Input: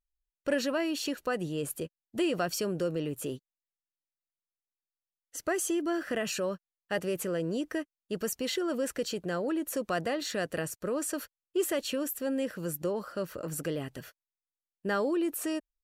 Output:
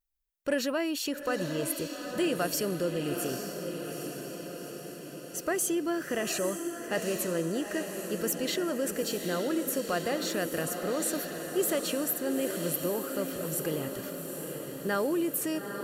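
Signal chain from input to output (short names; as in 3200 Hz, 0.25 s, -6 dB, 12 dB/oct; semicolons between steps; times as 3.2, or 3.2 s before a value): high shelf 12000 Hz +11.5 dB; on a send: diffused feedback echo 0.846 s, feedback 63%, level -6.5 dB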